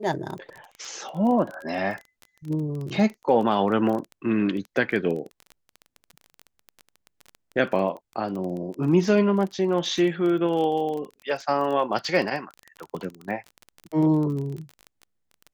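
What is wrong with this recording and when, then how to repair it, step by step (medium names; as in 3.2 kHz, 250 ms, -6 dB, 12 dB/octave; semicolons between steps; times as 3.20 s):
crackle 20 per s -30 dBFS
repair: de-click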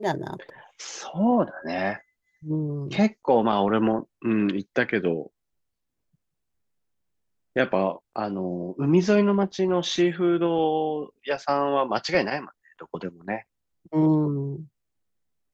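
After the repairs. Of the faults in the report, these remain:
nothing left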